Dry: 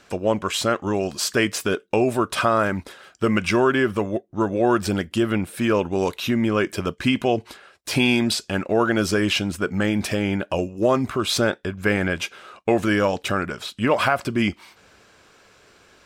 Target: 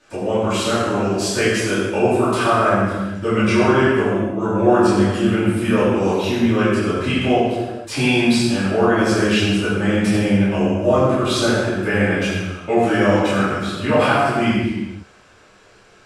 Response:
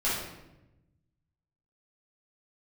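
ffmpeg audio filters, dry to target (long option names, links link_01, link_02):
-filter_complex "[1:a]atrim=start_sample=2205,afade=type=out:start_time=0.34:duration=0.01,atrim=end_sample=15435,asetrate=24255,aresample=44100[link_01];[0:a][link_01]afir=irnorm=-1:irlink=0,volume=-10.5dB"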